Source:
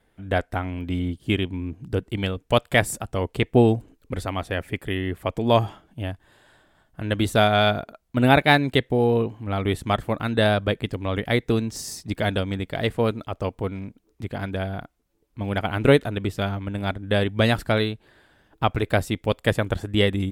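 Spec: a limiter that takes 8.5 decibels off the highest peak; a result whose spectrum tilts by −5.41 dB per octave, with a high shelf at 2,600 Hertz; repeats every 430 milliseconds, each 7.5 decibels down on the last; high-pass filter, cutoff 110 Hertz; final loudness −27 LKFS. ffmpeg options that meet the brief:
ffmpeg -i in.wav -af "highpass=110,highshelf=frequency=2600:gain=-7.5,alimiter=limit=-11.5dB:level=0:latency=1,aecho=1:1:430|860|1290|1720|2150:0.422|0.177|0.0744|0.0312|0.0131,volume=-0.5dB" out.wav

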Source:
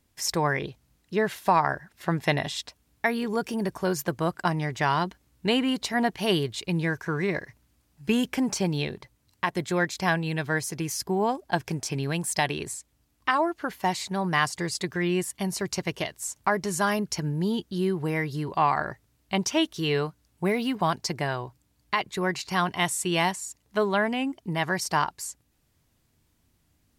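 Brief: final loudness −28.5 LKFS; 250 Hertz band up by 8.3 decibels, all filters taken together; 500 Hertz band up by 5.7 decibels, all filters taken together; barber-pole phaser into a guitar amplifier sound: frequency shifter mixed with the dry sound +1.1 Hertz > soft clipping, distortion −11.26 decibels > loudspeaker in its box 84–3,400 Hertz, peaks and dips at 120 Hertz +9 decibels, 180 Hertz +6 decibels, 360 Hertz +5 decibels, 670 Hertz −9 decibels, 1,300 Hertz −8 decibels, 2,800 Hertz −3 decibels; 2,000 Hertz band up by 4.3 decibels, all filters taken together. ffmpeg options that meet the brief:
ffmpeg -i in.wav -filter_complex "[0:a]equalizer=frequency=250:width_type=o:gain=5.5,equalizer=frequency=500:width_type=o:gain=4,equalizer=frequency=2000:width_type=o:gain=7,asplit=2[link_01][link_02];[link_02]afreqshift=1.1[link_03];[link_01][link_03]amix=inputs=2:normalize=1,asoftclip=threshold=-20.5dB,highpass=84,equalizer=frequency=120:width_type=q:width=4:gain=9,equalizer=frequency=180:width_type=q:width=4:gain=6,equalizer=frequency=360:width_type=q:width=4:gain=5,equalizer=frequency=670:width_type=q:width=4:gain=-9,equalizer=frequency=1300:width_type=q:width=4:gain=-8,equalizer=frequency=2800:width_type=q:width=4:gain=-3,lowpass=frequency=3400:width=0.5412,lowpass=frequency=3400:width=1.3066,volume=-0.5dB" out.wav

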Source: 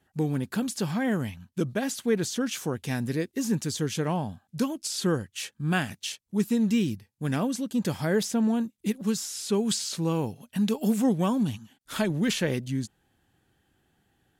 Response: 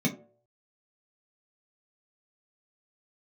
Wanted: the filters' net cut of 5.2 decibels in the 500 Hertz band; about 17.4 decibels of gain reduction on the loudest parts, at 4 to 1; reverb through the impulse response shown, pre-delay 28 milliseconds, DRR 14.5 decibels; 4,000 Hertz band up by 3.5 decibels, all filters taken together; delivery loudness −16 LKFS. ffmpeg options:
-filter_complex "[0:a]equalizer=frequency=500:width_type=o:gain=-6.5,equalizer=frequency=4000:width_type=o:gain=4.5,acompressor=threshold=-44dB:ratio=4,asplit=2[link_01][link_02];[1:a]atrim=start_sample=2205,adelay=28[link_03];[link_02][link_03]afir=irnorm=-1:irlink=0,volume=-22.5dB[link_04];[link_01][link_04]amix=inputs=2:normalize=0,volume=25.5dB"

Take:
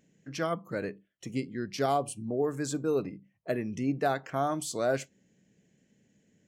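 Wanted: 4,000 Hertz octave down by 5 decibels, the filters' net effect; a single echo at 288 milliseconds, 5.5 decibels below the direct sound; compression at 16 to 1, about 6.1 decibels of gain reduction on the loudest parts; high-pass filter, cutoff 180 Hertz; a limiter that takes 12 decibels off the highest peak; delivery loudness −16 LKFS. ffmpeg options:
ffmpeg -i in.wav -af "highpass=180,equalizer=frequency=4000:width_type=o:gain=-6.5,acompressor=threshold=-29dB:ratio=16,alimiter=level_in=8dB:limit=-24dB:level=0:latency=1,volume=-8dB,aecho=1:1:288:0.531,volume=25.5dB" out.wav

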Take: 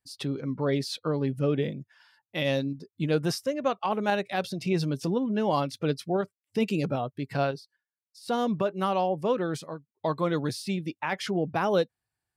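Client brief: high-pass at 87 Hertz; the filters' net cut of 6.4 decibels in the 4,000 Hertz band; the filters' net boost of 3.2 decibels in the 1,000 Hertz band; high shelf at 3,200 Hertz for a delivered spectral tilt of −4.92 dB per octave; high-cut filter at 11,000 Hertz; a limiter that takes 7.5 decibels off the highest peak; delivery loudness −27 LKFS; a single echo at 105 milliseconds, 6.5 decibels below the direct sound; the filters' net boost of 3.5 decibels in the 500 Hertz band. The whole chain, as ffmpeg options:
ffmpeg -i in.wav -af "highpass=87,lowpass=11000,equalizer=frequency=500:width_type=o:gain=3.5,equalizer=frequency=1000:width_type=o:gain=3.5,highshelf=frequency=3200:gain=-4,equalizer=frequency=4000:width_type=o:gain=-5.5,alimiter=limit=-17.5dB:level=0:latency=1,aecho=1:1:105:0.473,volume=1.5dB" out.wav

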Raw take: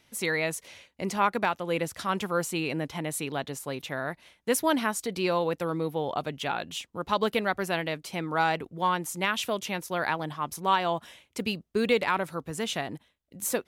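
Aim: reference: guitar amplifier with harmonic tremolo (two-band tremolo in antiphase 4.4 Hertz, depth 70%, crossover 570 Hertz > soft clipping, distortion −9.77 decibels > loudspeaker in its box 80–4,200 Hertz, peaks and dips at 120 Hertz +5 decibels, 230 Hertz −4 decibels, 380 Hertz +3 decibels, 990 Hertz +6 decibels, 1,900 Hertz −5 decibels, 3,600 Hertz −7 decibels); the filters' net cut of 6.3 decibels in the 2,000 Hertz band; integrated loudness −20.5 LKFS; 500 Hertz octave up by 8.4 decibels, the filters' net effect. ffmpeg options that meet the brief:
ffmpeg -i in.wav -filter_complex "[0:a]equalizer=frequency=500:width_type=o:gain=9,equalizer=frequency=2000:width_type=o:gain=-7,acrossover=split=570[link_01][link_02];[link_01]aeval=exprs='val(0)*(1-0.7/2+0.7/2*cos(2*PI*4.4*n/s))':channel_layout=same[link_03];[link_02]aeval=exprs='val(0)*(1-0.7/2-0.7/2*cos(2*PI*4.4*n/s))':channel_layout=same[link_04];[link_03][link_04]amix=inputs=2:normalize=0,asoftclip=threshold=-24.5dB,highpass=80,equalizer=frequency=120:width_type=q:width=4:gain=5,equalizer=frequency=230:width_type=q:width=4:gain=-4,equalizer=frequency=380:width_type=q:width=4:gain=3,equalizer=frequency=990:width_type=q:width=4:gain=6,equalizer=frequency=1900:width_type=q:width=4:gain=-5,equalizer=frequency=3600:width_type=q:width=4:gain=-7,lowpass=frequency=4200:width=0.5412,lowpass=frequency=4200:width=1.3066,volume=11.5dB" out.wav

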